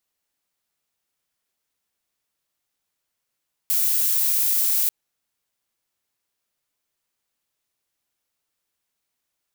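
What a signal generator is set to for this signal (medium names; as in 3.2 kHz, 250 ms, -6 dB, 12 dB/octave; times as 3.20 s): noise violet, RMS -20.5 dBFS 1.19 s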